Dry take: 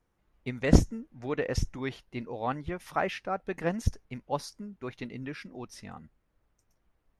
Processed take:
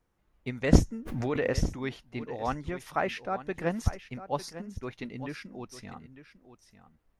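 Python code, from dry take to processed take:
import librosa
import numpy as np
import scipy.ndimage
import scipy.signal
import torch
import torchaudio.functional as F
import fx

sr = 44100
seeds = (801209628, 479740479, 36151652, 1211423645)

y = fx.peak_eq(x, sr, hz=7000.0, db=8.0, octaves=0.82, at=(2.3, 2.83))
y = y + 10.0 ** (-13.5 / 20.0) * np.pad(y, (int(900 * sr / 1000.0), 0))[:len(y)]
y = fx.pre_swell(y, sr, db_per_s=30.0, at=(1.05, 1.51), fade=0.02)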